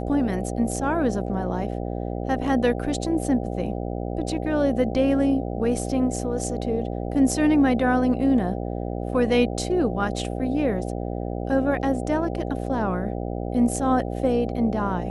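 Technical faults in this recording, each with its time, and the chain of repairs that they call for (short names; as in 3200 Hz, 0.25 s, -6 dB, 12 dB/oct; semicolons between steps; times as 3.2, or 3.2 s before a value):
buzz 60 Hz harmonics 13 -29 dBFS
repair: de-hum 60 Hz, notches 13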